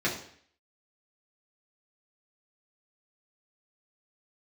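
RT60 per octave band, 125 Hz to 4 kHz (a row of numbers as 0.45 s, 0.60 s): 0.60 s, 0.60 s, 0.60 s, 0.60 s, 0.65 s, 0.60 s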